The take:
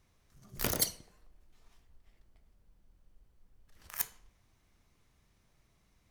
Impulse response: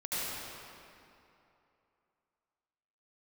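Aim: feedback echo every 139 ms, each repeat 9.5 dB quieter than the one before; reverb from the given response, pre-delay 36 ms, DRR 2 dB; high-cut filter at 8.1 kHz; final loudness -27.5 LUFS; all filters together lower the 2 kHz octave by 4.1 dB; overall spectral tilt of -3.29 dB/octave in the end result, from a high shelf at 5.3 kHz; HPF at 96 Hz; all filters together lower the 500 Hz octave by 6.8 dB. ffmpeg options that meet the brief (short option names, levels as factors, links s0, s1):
-filter_complex "[0:a]highpass=96,lowpass=8100,equalizer=f=500:t=o:g=-8.5,equalizer=f=2000:t=o:g=-4,highshelf=f=5300:g=-4.5,aecho=1:1:139|278|417|556:0.335|0.111|0.0365|0.012,asplit=2[s0][s1];[1:a]atrim=start_sample=2205,adelay=36[s2];[s1][s2]afir=irnorm=-1:irlink=0,volume=0.376[s3];[s0][s3]amix=inputs=2:normalize=0,volume=5.01"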